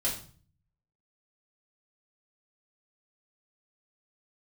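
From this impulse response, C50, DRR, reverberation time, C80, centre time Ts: 7.5 dB, -6.0 dB, 0.45 s, 12.0 dB, 28 ms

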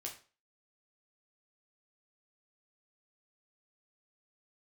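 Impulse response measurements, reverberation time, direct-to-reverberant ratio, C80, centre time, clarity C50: 0.40 s, -0.5 dB, 14.5 dB, 21 ms, 9.5 dB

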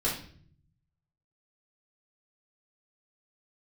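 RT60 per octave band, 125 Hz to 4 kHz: 1.3, 0.90, 0.60, 0.45, 0.50, 0.45 s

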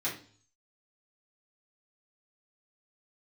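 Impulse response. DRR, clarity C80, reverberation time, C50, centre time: -8.5 dB, 13.5 dB, 0.45 s, 8.0 dB, 25 ms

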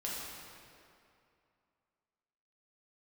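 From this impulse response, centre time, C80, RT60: 0.14 s, 0.0 dB, 2.6 s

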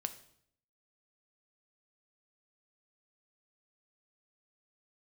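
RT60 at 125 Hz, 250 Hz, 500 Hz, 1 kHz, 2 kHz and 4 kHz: 0.85, 0.80, 0.70, 0.60, 0.60, 0.60 s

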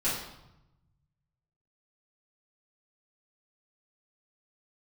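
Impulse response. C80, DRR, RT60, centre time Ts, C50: 5.5 dB, -11.5 dB, 0.90 s, 54 ms, 2.5 dB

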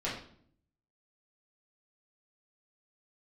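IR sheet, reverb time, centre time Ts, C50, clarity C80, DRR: 0.60 s, 38 ms, 4.5 dB, 8.5 dB, -8.0 dB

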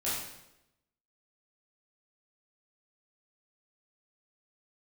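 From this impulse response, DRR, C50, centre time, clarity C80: -10.0 dB, 0.5 dB, 66 ms, 4.0 dB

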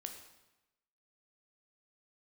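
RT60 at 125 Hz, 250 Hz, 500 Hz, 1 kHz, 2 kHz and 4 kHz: 1.0, 1.0, 0.95, 1.0, 0.95, 0.85 s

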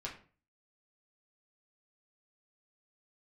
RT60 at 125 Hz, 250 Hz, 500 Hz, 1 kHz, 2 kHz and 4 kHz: 0.55, 0.45, 0.45, 0.40, 0.35, 0.30 s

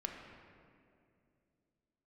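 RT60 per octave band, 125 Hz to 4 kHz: 3.3, 3.2, 2.8, 2.1, 2.0, 1.5 s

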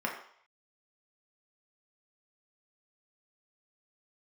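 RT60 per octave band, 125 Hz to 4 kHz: 0.30, 0.40, 0.60, 0.65, 0.60, 0.65 s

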